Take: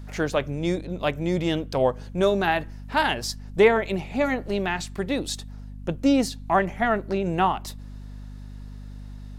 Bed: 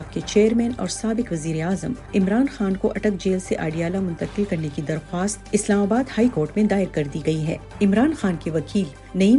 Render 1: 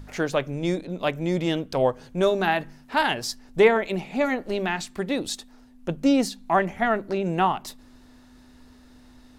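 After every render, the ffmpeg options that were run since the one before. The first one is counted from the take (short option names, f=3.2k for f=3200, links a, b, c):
-af "bandreject=f=50:t=h:w=4,bandreject=f=100:t=h:w=4,bandreject=f=150:t=h:w=4,bandreject=f=200:t=h:w=4"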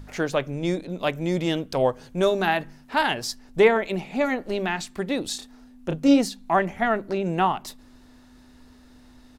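-filter_complex "[0:a]asettb=1/sr,asplit=3[a][b][c];[a]atrim=end=0.814[d];[b]atrim=start=0.81:end=2.58,asetpts=PTS-STARTPTS,afade=t=in:d=0.004:c=qsin,afade=t=out:st=1.766:d=0.004:c=qsin,highshelf=f=4.8k:g=3.5[e];[c]atrim=start=2.576[f];[d][e]acrossfade=d=0.004:c1=hsin:c2=qsin[g];[g][f]acrossfade=d=0.004:c1=qsin:c2=hsin,asplit=3[h][i][j];[h]afade=t=out:st=5.33:d=0.02[k];[i]asplit=2[l][m];[m]adelay=32,volume=-5dB[n];[l][n]amix=inputs=2:normalize=0,afade=t=in:st=5.33:d=0.02,afade=t=out:st=6.18:d=0.02[o];[j]afade=t=in:st=6.18:d=0.02[p];[k][o][p]amix=inputs=3:normalize=0"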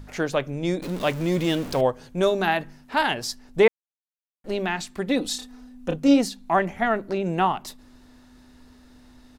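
-filter_complex "[0:a]asettb=1/sr,asplit=3[a][b][c];[a]atrim=end=0.824[d];[b]atrim=start=0.82:end=1.81,asetpts=PTS-STARTPTS,afade=t=in:d=0.004:c=qsin,afade=t=out:st=0.986:d=0.004:c=qsin,aeval=exprs='val(0)+0.5*0.0282*sgn(val(0))':c=same[e];[c]atrim=start=1.806[f];[d][e]acrossfade=d=0.004:c1=hsin:c2=qsin[g];[g][f]acrossfade=d=0.004:c1=qsin:c2=hsin,asettb=1/sr,asplit=3[h][i][j];[h]atrim=end=5.074[k];[i]atrim=start=5.07:end=5.96,asetpts=PTS-STARTPTS,afade=t=in:d=0.004:c=qsin,afade=t=out:st=0.886:d=0.004:c=qsin,aecho=1:1:4:0.7,atrim=end_sample=39249[l];[j]atrim=start=5.956[m];[k][l]acrossfade=d=0.004:c1=hsin:c2=qsin[n];[n][m]acrossfade=d=0.004:c1=qsin:c2=hsin,asplit=3[o][p][q];[o]atrim=end=3.68,asetpts=PTS-STARTPTS,afade=t=out:st=3.676:d=0.004:c=hsin[r];[p]atrim=start=3.68:end=4.44,asetpts=PTS-STARTPTS,volume=0[s];[q]atrim=start=4.44,asetpts=PTS-STARTPTS,afade=t=in:d=0.004:c=hsin[t];[r][s][t]concat=n=3:v=0:a=1"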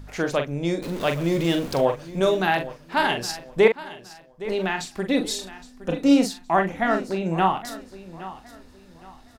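-filter_complex "[0:a]asplit=2[a][b];[b]adelay=42,volume=-7dB[c];[a][c]amix=inputs=2:normalize=0,aecho=1:1:816|1632|2448:0.158|0.0491|0.0152"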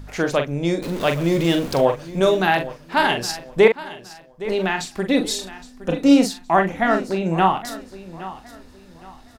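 -af "volume=3.5dB,alimiter=limit=-2dB:level=0:latency=1"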